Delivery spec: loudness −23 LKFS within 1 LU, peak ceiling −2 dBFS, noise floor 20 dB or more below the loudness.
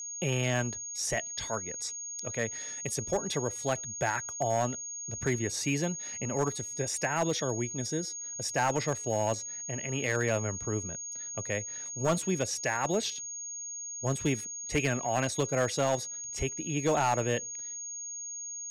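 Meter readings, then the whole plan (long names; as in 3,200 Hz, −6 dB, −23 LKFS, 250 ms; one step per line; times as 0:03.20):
share of clipped samples 0.4%; peaks flattened at −20.5 dBFS; interfering tone 6,600 Hz; level of the tone −37 dBFS; integrated loudness −31.5 LKFS; sample peak −20.5 dBFS; target loudness −23.0 LKFS
→ clipped peaks rebuilt −20.5 dBFS
notch filter 6,600 Hz, Q 30
level +8.5 dB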